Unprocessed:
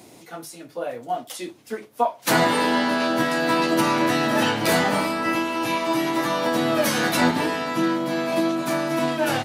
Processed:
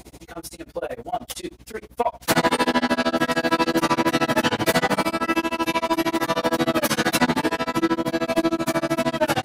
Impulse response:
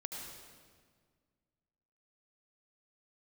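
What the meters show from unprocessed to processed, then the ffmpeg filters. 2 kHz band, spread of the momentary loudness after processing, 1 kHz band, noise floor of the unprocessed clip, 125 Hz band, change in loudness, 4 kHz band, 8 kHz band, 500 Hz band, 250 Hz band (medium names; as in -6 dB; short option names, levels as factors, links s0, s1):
0.0 dB, 13 LU, 0.0 dB, -48 dBFS, 0.0 dB, 0.0 dB, 0.0 dB, 0.0 dB, 0.0 dB, 0.0 dB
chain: -af "aeval=exprs='0.531*(cos(1*acos(clip(val(0)/0.531,-1,1)))-cos(1*PI/2))+0.0944*(cos(5*acos(clip(val(0)/0.531,-1,1)))-cos(5*PI/2))':c=same,aeval=exprs='val(0)+0.00631*(sin(2*PI*60*n/s)+sin(2*PI*2*60*n/s)/2+sin(2*PI*3*60*n/s)/3+sin(2*PI*4*60*n/s)/4+sin(2*PI*5*60*n/s)/5)':c=same,tremolo=f=13:d=1"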